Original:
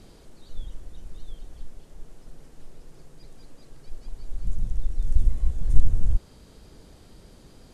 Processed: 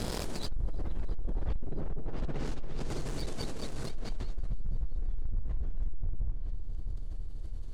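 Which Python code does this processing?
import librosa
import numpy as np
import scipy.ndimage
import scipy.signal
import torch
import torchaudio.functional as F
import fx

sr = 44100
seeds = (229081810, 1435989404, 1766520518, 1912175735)

y = fx.doppler_pass(x, sr, speed_mps=18, closest_m=2.9, pass_at_s=1.59)
y = fx.rider(y, sr, range_db=4, speed_s=0.5)
y = fx.env_lowpass_down(y, sr, base_hz=510.0, full_db=-37.0)
y = fx.leveller(y, sr, passes=3)
y = fx.echo_heads(y, sr, ms=330, heads='first and second', feedback_pct=51, wet_db=-17)
y = fx.env_flatten(y, sr, amount_pct=70)
y = y * librosa.db_to_amplitude(2.5)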